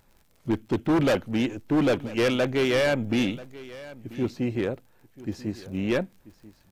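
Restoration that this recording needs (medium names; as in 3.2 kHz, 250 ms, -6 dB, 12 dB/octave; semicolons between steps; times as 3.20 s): de-click; inverse comb 987 ms -18.5 dB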